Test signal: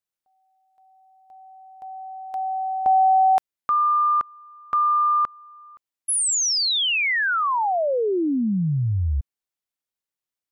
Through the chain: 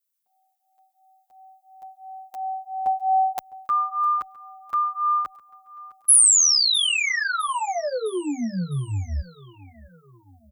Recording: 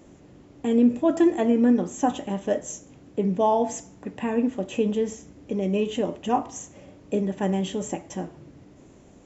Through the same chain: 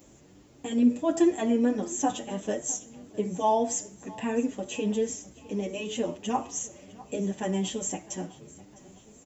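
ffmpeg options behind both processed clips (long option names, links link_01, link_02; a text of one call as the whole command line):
ffmpeg -i in.wav -filter_complex "[0:a]aemphasis=mode=production:type=75kf,aecho=1:1:657|1314|1971|2628:0.0944|0.0472|0.0236|0.0118,asplit=2[link_01][link_02];[link_02]adelay=7.7,afreqshift=2.9[link_03];[link_01][link_03]amix=inputs=2:normalize=1,volume=-2dB" out.wav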